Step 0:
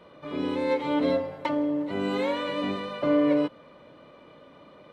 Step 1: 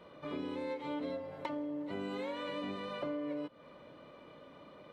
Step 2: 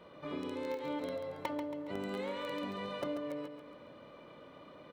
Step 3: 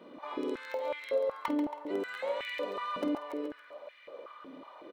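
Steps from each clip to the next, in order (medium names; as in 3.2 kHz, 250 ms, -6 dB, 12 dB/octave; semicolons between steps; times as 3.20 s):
compression 6:1, threshold -33 dBFS, peak gain reduction 14 dB; trim -3.5 dB
in parallel at -10.5 dB: bit crusher 5-bit; on the sum: feedback delay 138 ms, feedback 45%, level -7.5 dB
doubling 50 ms -10.5 dB; step-sequenced high-pass 5.4 Hz 260–2100 Hz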